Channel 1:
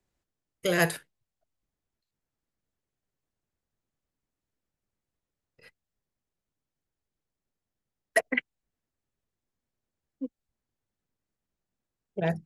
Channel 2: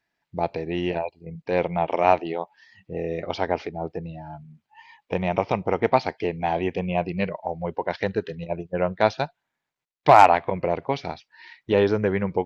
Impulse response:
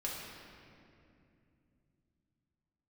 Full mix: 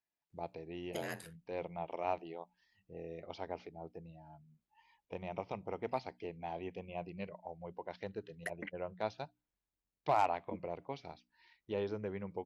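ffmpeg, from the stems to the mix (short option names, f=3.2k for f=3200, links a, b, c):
-filter_complex "[0:a]acompressor=threshold=-31dB:ratio=8,aeval=exprs='val(0)*sin(2*PI*45*n/s)':c=same,adelay=300,volume=-5.5dB[a];[1:a]equalizer=f=1.7k:t=o:w=0.51:g=-5.5,bandreject=f=60:t=h:w=6,bandreject=f=120:t=h:w=6,bandreject=f=180:t=h:w=6,bandreject=f=240:t=h:w=6,bandreject=f=300:t=h:w=6,volume=-17.5dB[b];[a][b]amix=inputs=2:normalize=0"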